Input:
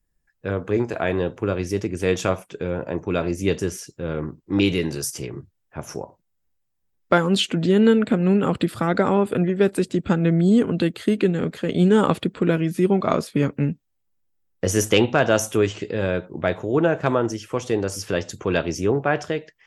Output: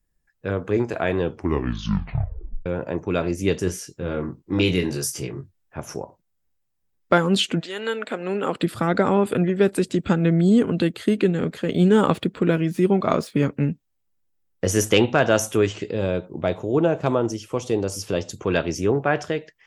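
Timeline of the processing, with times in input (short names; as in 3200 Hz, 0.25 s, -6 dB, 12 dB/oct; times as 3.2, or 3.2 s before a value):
1.2 tape stop 1.46 s
3.64–5.8 doubler 22 ms -6 dB
7.59–8.62 HPF 1100 Hz -> 280 Hz
9.23–10.79 mismatched tape noise reduction encoder only
11.62–13.67 median filter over 3 samples
15.91–18.43 bell 1700 Hz -8.5 dB 0.76 oct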